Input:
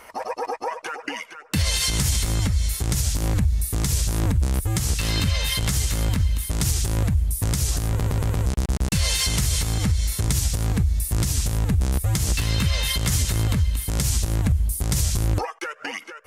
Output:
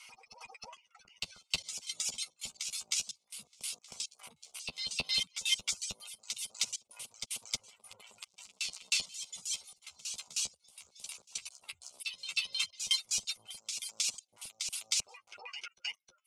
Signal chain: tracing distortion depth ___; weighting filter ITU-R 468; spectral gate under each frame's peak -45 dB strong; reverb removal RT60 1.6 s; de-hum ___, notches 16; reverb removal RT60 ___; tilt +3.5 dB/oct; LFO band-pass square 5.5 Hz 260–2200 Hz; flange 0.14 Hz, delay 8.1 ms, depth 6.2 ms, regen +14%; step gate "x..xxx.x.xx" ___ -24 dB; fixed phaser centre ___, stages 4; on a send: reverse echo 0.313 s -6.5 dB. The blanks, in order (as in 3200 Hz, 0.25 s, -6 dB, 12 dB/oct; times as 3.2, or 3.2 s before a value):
0.087 ms, 432.8 Hz, 1.2 s, 111 bpm, 730 Hz